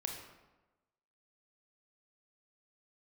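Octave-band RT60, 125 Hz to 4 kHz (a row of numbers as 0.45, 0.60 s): 1.1, 1.1, 1.1, 1.1, 0.90, 0.70 s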